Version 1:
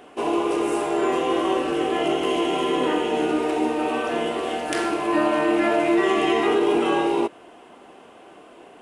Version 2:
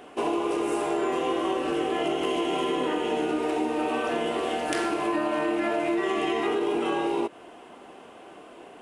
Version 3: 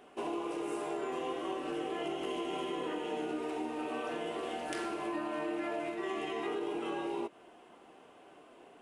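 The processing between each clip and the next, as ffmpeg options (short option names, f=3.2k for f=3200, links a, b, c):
-af "acompressor=threshold=-23dB:ratio=6"
-af "flanger=delay=4.9:depth=2.8:regen=-68:speed=0.41:shape=triangular,volume=-6dB"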